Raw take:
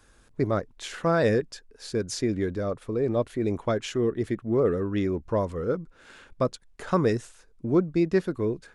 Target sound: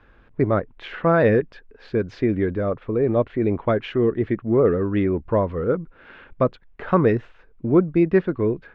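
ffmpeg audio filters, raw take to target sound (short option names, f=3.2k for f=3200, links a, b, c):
-af "lowpass=f=2.8k:w=0.5412,lowpass=f=2.8k:w=1.3066,volume=5.5dB"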